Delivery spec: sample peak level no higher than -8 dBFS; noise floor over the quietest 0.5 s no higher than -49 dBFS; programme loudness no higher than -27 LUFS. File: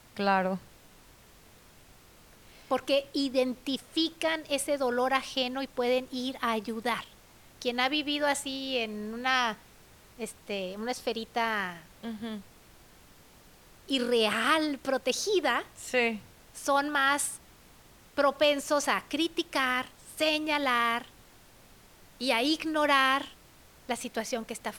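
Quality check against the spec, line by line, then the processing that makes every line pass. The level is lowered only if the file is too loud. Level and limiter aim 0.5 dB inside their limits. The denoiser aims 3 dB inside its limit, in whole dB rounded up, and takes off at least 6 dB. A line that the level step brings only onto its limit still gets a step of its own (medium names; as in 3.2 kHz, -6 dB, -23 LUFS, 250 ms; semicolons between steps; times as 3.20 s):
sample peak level -9.0 dBFS: pass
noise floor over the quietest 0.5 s -56 dBFS: pass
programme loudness -29.0 LUFS: pass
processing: none needed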